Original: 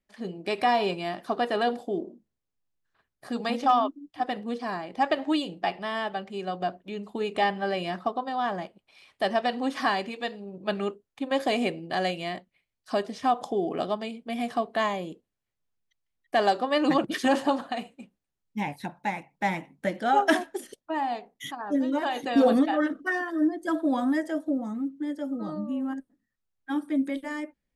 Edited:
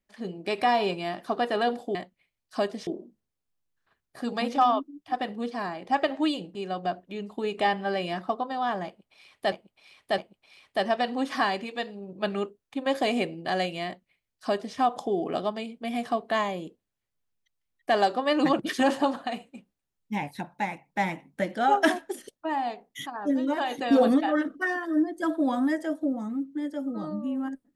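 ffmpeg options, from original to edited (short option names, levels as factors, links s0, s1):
-filter_complex "[0:a]asplit=6[s0][s1][s2][s3][s4][s5];[s0]atrim=end=1.952[s6];[s1]atrim=start=12.298:end=13.222[s7];[s2]atrim=start=1.948:end=5.632[s8];[s3]atrim=start=6.318:end=9.292[s9];[s4]atrim=start=8.628:end=9.292[s10];[s5]atrim=start=8.628[s11];[s6][s7]acrossfade=d=0.004:c1=hsin:c2=hsin[s12];[s12][s8]acrossfade=d=0.004:c1=hsin:c2=hsin[s13];[s13][s9]acrossfade=d=0.004:c1=hsin:c2=hsin[s14];[s14][s10]acrossfade=d=0.004:c1=hsin:c2=hsin[s15];[s15][s11]acrossfade=d=0.004:c1=hsin:c2=hsin"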